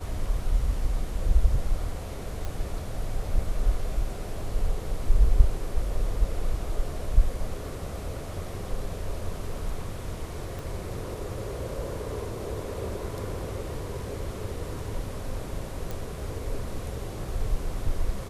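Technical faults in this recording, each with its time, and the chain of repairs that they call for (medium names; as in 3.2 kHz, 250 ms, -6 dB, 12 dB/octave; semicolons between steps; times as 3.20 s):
2.45 s: pop
10.59 s: pop
15.91 s: pop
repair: de-click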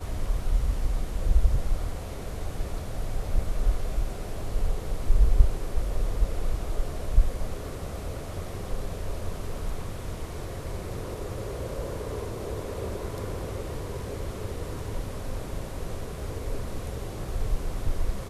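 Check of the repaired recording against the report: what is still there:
10.59 s: pop
15.91 s: pop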